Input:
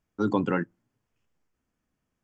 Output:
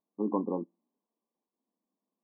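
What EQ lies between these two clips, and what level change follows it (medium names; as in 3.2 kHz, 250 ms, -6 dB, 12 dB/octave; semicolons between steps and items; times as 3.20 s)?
brick-wall FIR band-pass 180–1200 Hz; -4.5 dB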